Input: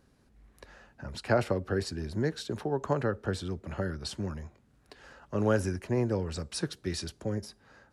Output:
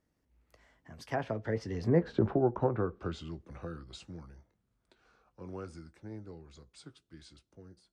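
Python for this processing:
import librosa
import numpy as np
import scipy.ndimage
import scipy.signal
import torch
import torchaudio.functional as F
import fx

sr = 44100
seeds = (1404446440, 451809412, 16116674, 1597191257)

y = fx.doppler_pass(x, sr, speed_mps=47, closest_m=9.8, pass_at_s=2.15)
y = fx.doubler(y, sr, ms=18.0, db=-13.0)
y = fx.env_lowpass_down(y, sr, base_hz=1200.0, full_db=-32.5)
y = y * 10.0 ** (7.0 / 20.0)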